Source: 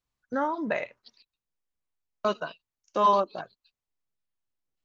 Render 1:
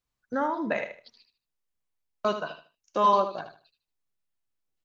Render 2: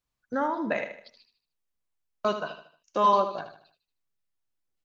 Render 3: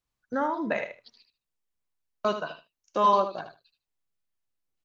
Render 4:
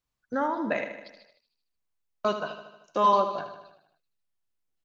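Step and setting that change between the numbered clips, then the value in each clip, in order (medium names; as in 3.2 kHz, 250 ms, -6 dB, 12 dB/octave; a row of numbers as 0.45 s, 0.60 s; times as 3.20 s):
feedback delay, feedback: 25%, 40%, 15%, 59%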